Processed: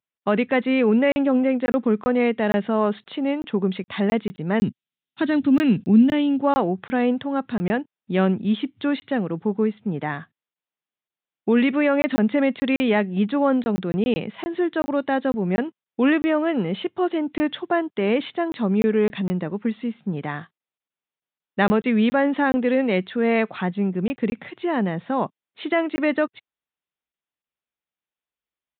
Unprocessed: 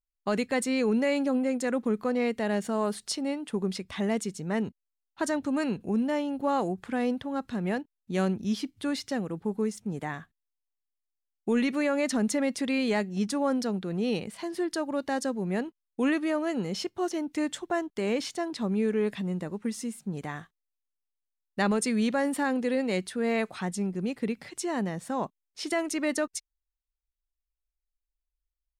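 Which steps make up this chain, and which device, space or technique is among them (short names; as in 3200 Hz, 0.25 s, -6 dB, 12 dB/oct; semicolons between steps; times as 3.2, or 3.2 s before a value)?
call with lost packets (HPF 110 Hz 24 dB/oct; downsampling 8000 Hz; packet loss packets of 20 ms random); 4.6–6.4 graphic EQ 125/250/500/1000/4000/8000 Hz +6/+6/-6/-7/+7/+5 dB; gain +7.5 dB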